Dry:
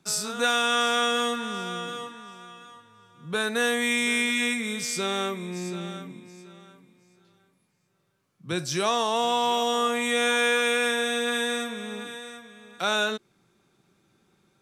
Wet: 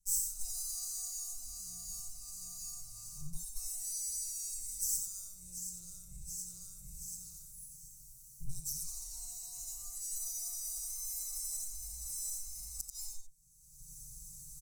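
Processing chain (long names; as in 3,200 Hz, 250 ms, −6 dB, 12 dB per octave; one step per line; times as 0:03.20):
lower of the sound and its delayed copy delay 5.2 ms
camcorder AGC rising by 35 dB per second
inverse Chebyshev band-stop filter 190–3,600 Hz, stop band 40 dB
gate with flip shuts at −15 dBFS, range −29 dB
comb filter 5.7 ms, depth 83%
single-tap delay 88 ms −6 dB
level −3.5 dB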